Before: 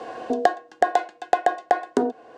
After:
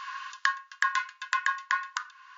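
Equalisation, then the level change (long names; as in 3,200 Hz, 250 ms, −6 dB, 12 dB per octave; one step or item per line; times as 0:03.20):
dynamic equaliser 3,800 Hz, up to −4 dB, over −48 dBFS, Q 2.8
linear-phase brick-wall band-pass 990–7,200 Hz
+4.5 dB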